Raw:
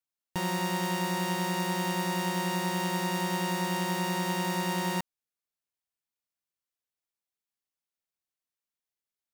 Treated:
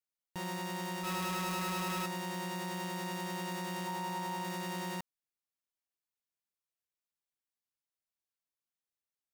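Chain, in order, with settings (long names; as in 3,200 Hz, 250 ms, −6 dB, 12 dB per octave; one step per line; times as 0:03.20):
0:01.03–0:02.06: sign of each sample alone
0:03.87–0:04.44: parametric band 880 Hz +8 dB 0.41 octaves
brickwall limiter −25.5 dBFS, peak gain reduction 7 dB
level −5.5 dB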